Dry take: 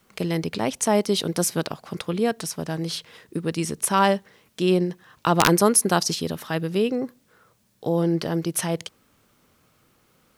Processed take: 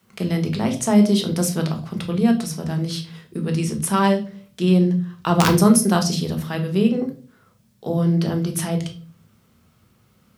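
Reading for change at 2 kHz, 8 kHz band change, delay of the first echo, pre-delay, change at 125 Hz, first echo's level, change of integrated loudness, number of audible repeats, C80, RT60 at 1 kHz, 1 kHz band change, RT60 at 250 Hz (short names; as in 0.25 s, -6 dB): -1.0 dB, -1.0 dB, none, 4 ms, +7.5 dB, none, +3.5 dB, none, 16.5 dB, 0.30 s, -1.0 dB, 0.55 s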